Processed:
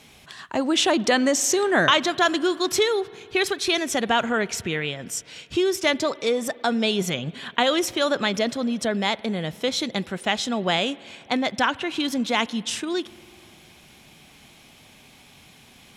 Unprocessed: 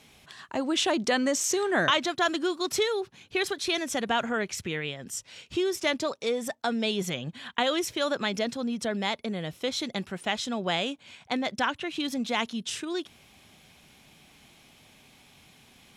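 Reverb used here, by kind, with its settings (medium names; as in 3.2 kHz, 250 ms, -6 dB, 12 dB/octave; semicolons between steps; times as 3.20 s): spring tank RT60 2.7 s, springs 49 ms, chirp 65 ms, DRR 20 dB; trim +5.5 dB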